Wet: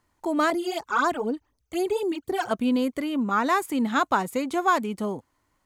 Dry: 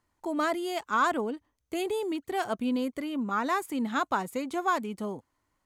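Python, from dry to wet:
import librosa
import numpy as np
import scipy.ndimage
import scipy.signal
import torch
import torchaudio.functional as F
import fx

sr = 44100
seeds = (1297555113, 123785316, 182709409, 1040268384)

y = fx.phaser_stages(x, sr, stages=12, low_hz=180.0, high_hz=3200.0, hz=4.0, feedback_pct=35, at=(0.5, 2.51))
y = y * 10.0 ** (5.5 / 20.0)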